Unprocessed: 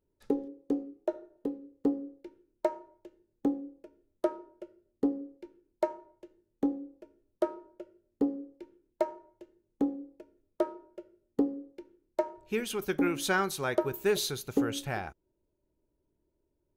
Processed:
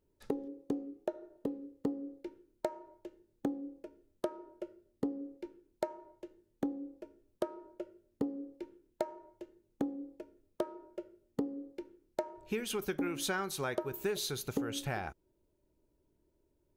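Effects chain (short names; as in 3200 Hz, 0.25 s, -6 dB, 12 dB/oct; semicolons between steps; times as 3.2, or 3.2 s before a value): compressor 4:1, threshold -36 dBFS, peak gain reduction 12.5 dB; gain +3 dB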